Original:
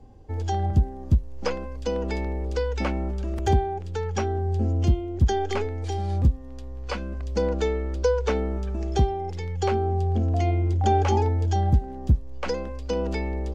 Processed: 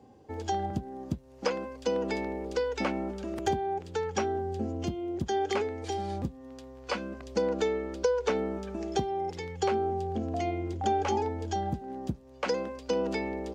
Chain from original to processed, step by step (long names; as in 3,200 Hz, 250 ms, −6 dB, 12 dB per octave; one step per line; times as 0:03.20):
downward compressor 4 to 1, threshold −22 dBFS, peak gain reduction 7 dB
high-pass filter 180 Hz 12 dB per octave